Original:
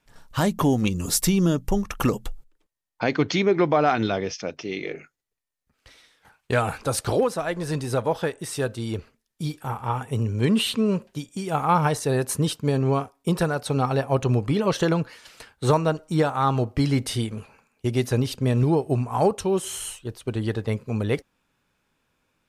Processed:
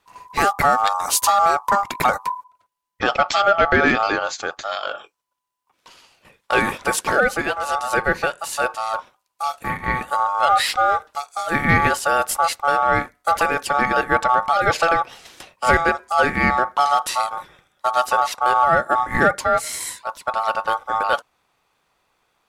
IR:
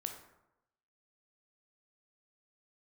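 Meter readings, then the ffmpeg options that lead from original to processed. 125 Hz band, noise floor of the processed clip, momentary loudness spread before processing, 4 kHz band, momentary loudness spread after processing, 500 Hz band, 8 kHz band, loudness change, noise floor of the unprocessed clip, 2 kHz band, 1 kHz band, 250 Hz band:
-9.0 dB, -71 dBFS, 10 LU, +4.0 dB, 10 LU, +1.5 dB, +4.0 dB, +4.5 dB, -76 dBFS, +13.0 dB, +11.0 dB, -5.5 dB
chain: -af "aeval=exprs='val(0)*sin(2*PI*1000*n/s)':c=same,acontrast=87"

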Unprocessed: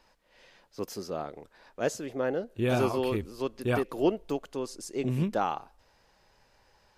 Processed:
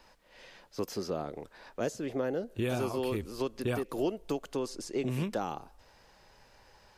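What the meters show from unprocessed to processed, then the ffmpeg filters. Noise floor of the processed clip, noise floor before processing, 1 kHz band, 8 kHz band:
-61 dBFS, -66 dBFS, -5.5 dB, -2.0 dB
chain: -filter_complex "[0:a]acrossover=split=470|5000[s0][s1][s2];[s0]acompressor=threshold=0.0141:ratio=4[s3];[s1]acompressor=threshold=0.00794:ratio=4[s4];[s2]acompressor=threshold=0.002:ratio=4[s5];[s3][s4][s5]amix=inputs=3:normalize=0,volume=1.68"

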